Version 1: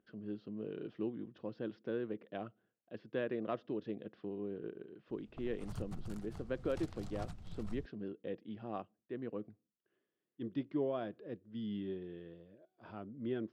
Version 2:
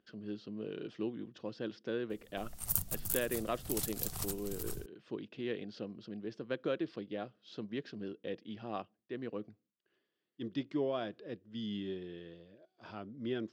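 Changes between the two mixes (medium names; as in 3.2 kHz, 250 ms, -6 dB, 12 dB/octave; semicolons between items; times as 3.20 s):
background: entry -3.00 s; master: remove tape spacing loss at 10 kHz 30 dB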